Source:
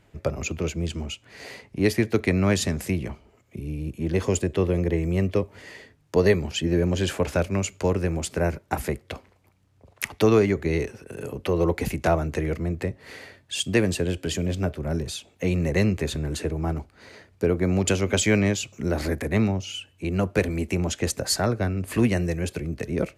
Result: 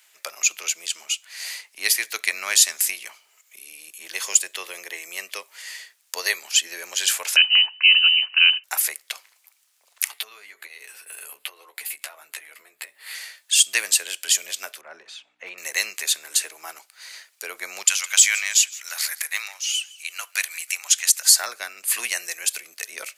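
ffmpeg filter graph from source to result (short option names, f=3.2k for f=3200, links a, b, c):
-filter_complex "[0:a]asettb=1/sr,asplit=3[a][b][c];[a]atrim=end=7.364[d];[b]atrim=start=7.36:end=8.64,asetpts=PTS-STARTPTS,afade=t=in:d=0.004:c=qsin,afade=t=out:st=1.276:d=0.004:c=qsin,highpass=40,lowpass=f=2.6k:t=q:w=0.5098,lowpass=f=2.6k:t=q:w=0.6013,lowpass=f=2.6k:t=q:w=0.9,lowpass=f=2.6k:t=q:w=2.563,afreqshift=-3100[e];[c]atrim=start=8.636[f];[d][e]acrossfade=d=0.004:c1=hsin:c2=qsin[g];[g][f]acrossfade=d=0.004:c1=qsin:c2=hsin,asettb=1/sr,asplit=3[h][i][j];[h]atrim=end=10.114[k];[i]atrim=start=10.11:end=13.15,asetpts=PTS-STARTPTS,afade=t=in:d=0.004:c=qsin,afade=t=out:st=3.036:d=0.004:c=qsin,equalizer=f=6k:t=o:w=0.44:g=-13,acompressor=threshold=-33dB:ratio=20:attack=3.2:release=140:knee=1:detection=peak,asplit=2[l][m];[m]adelay=14,volume=-5.5dB[n];[l][n]amix=inputs=2:normalize=0,atrim=end_sample=134064[o];[j]atrim=start=13.146[p];[k][o]acrossfade=d=0.004:c1=hsin:c2=qsin[q];[q][p]acrossfade=d=0.004:c1=qsin:c2=hsin,asettb=1/sr,asplit=3[r][s][t];[r]atrim=end=14.814[u];[s]atrim=start=14.81:end=15.58,asetpts=PTS-STARTPTS,afade=t=in:d=0.004:c=qsin,afade=t=out:st=0.766:d=0.004:c=qsin,lowpass=1.6k,asoftclip=type=hard:threshold=-14dB,aeval=exprs='val(0)+0.0126*(sin(2*PI*60*n/s)+sin(2*PI*2*60*n/s)/2+sin(2*PI*3*60*n/s)/3+sin(2*PI*4*60*n/s)/4+sin(2*PI*5*60*n/s)/5)':c=same[v];[t]atrim=start=15.576[w];[u][v]acrossfade=d=0.004:c1=hsin:c2=qsin[x];[x][w]acrossfade=d=0.004:c1=qsin:c2=hsin,asettb=1/sr,asplit=3[y][z][aa];[y]atrim=end=17.844[ab];[z]atrim=start=17.84:end=21.34,asetpts=PTS-STARTPTS,afade=t=in:d=0.004:c=qsin,afade=t=out:st=3.496:d=0.004:c=qsin,highpass=1.1k,aecho=1:1:162|324|486:0.0891|0.0392|0.0173,atrim=end_sample=154350[ac];[aa]atrim=start=21.336[ad];[ab][ac]acrossfade=d=0.004:c1=hsin:c2=qsin[ae];[ae][ad]acrossfade=d=0.004:c1=qsin:c2=hsin,highpass=880,aderivative,alimiter=level_in=17.5dB:limit=-1dB:release=50:level=0:latency=1,volume=-1dB"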